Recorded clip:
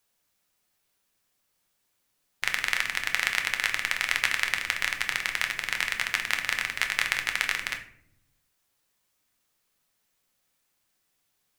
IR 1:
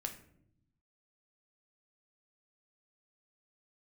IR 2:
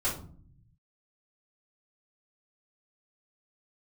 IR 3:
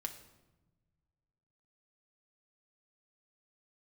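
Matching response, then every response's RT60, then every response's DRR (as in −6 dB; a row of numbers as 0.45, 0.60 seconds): 1; 0.70, 0.50, 1.1 seconds; 4.0, −8.0, 3.5 decibels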